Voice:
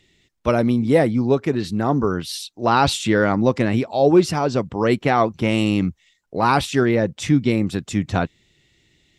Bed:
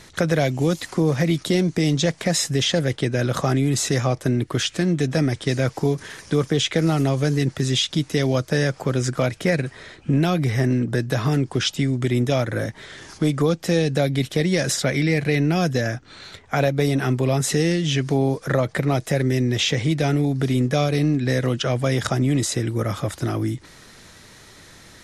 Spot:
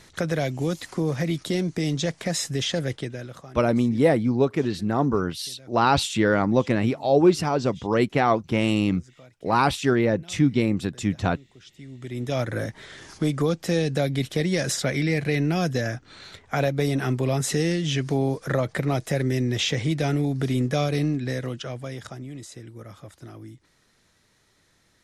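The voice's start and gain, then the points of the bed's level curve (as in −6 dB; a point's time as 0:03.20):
3.10 s, −3.0 dB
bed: 0:02.94 −5.5 dB
0:03.66 −28.5 dB
0:11.61 −28.5 dB
0:12.41 −3.5 dB
0:20.99 −3.5 dB
0:22.30 −18 dB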